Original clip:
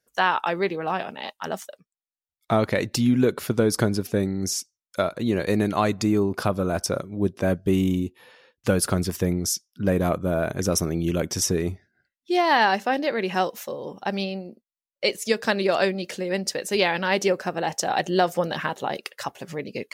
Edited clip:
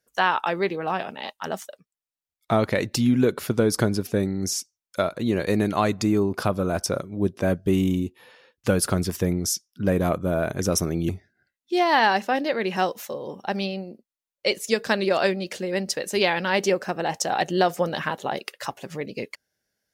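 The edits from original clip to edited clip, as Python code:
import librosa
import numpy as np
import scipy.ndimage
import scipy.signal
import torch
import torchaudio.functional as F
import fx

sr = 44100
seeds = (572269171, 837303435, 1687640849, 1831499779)

y = fx.edit(x, sr, fx.cut(start_s=11.09, length_s=0.58), tone=tone)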